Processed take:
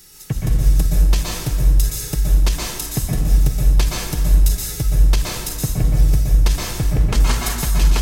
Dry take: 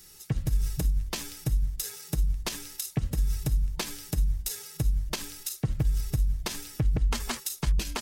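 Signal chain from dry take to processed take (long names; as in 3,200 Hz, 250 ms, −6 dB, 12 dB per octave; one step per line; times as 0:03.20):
feedback echo with a low-pass in the loop 186 ms, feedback 69%, level −14 dB
dense smooth reverb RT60 1.2 s, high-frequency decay 0.65×, pre-delay 110 ms, DRR −3 dB
level +6 dB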